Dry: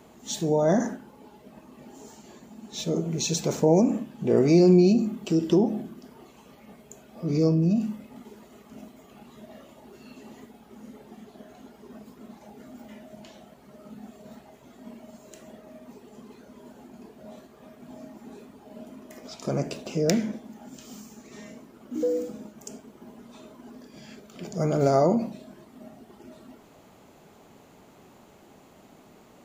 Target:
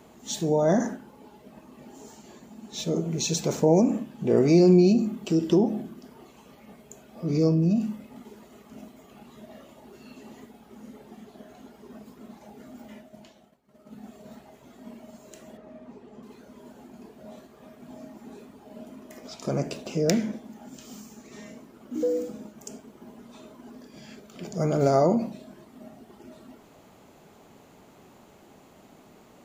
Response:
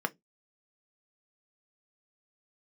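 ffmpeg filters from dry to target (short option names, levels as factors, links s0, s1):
-filter_complex "[0:a]asplit=3[s0][s1][s2];[s0]afade=t=out:st=13:d=0.02[s3];[s1]agate=range=0.0224:threshold=0.00891:ratio=3:detection=peak,afade=t=in:st=13:d=0.02,afade=t=out:st=14.05:d=0.02[s4];[s2]afade=t=in:st=14.05:d=0.02[s5];[s3][s4][s5]amix=inputs=3:normalize=0,asettb=1/sr,asplit=3[s6][s7][s8];[s6]atrim=end=15.574[s9];[s7]atrim=start=15.57:end=16.23,asetpts=PTS-STARTPTS,afade=t=in:d=0.004:c=qsin,afade=t=out:st=0.656:d=0.004:c=qsin,aemphasis=mode=reproduction:type=75fm[s10];[s8]atrim=start=16.226[s11];[s9][s10]acrossfade=d=0.004:c1=hsin:c2=qsin[s12];[s12][s11]acrossfade=d=0.004:c1=qsin:c2=hsin"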